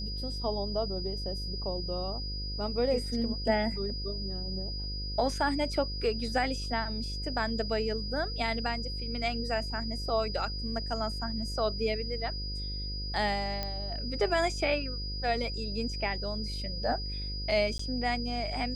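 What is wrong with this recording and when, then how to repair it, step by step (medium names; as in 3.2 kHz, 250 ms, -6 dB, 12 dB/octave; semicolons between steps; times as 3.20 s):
buzz 50 Hz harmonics 11 -37 dBFS
whine 4.9 kHz -38 dBFS
13.63 s: pop -19 dBFS
17.78–17.79 s: dropout 14 ms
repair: de-click; band-stop 4.9 kHz, Q 30; de-hum 50 Hz, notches 11; interpolate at 17.78 s, 14 ms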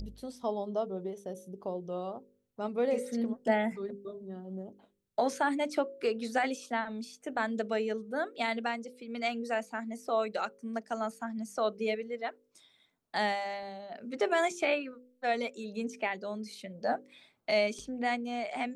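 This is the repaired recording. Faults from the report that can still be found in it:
nothing left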